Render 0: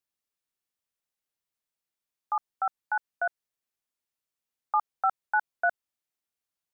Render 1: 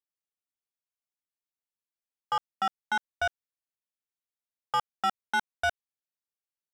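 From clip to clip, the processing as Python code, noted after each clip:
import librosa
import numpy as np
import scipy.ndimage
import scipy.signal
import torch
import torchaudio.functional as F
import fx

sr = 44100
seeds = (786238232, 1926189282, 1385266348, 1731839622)

y = fx.leveller(x, sr, passes=3)
y = y * 10.0 ** (-5.0 / 20.0)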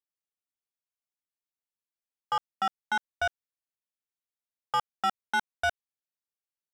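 y = x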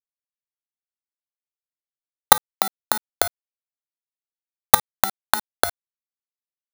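y = fx.bit_reversed(x, sr, seeds[0], block=16)
y = fx.recorder_agc(y, sr, target_db=-25.5, rise_db_per_s=70.0, max_gain_db=30)
y = fx.quant_companded(y, sr, bits=2)
y = y * 10.0 ** (-1.0 / 20.0)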